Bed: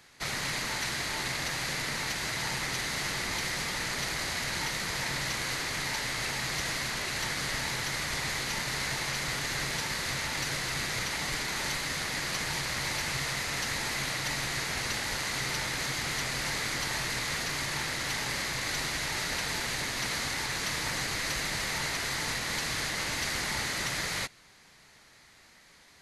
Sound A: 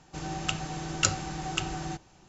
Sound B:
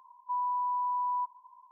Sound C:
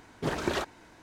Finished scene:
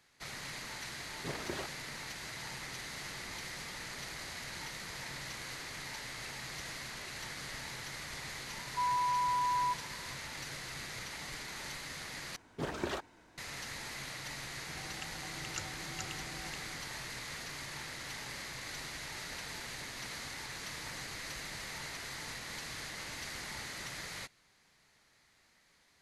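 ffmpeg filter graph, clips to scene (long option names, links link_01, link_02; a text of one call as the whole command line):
ffmpeg -i bed.wav -i cue0.wav -i cue1.wav -i cue2.wav -filter_complex "[3:a]asplit=2[link_01][link_02];[0:a]volume=-11dB[link_03];[link_01]acrusher=bits=10:mix=0:aa=0.000001[link_04];[1:a]aecho=1:1:427:0.708[link_05];[link_03]asplit=2[link_06][link_07];[link_06]atrim=end=12.364[link_08];[link_02]atrim=end=1.02,asetpts=PTS-STARTPTS,volume=-7dB[link_09];[link_07]atrim=start=13.376[link_10];[link_04]atrim=end=1.02,asetpts=PTS-STARTPTS,volume=-11dB,afade=type=in:duration=0.004:curve=hsin,afade=type=out:start_time=1.016:duration=0.004:curve=hsin,adelay=1020[link_11];[2:a]atrim=end=1.71,asetpts=PTS-STARTPTS,volume=-1dB,afade=type=in:duration=0.004:curve=hsin,afade=type=out:start_time=1.706:duration=0.004:curve=hsin,adelay=8480[link_12];[link_05]atrim=end=2.28,asetpts=PTS-STARTPTS,volume=-17dB,afade=type=in:duration=0.004:curve=hsin,afade=type=out:start_time=2.276:duration=0.004:curve=hsin,adelay=14530[link_13];[link_08][link_09]acrossfade=duration=0.004:curve1=hsin:curve2=hsin[link_14];[link_14][link_10]acrossfade=duration=0.004:curve1=hsin:curve2=hsin[link_15];[link_15][link_11][link_12][link_13]amix=inputs=4:normalize=0" out.wav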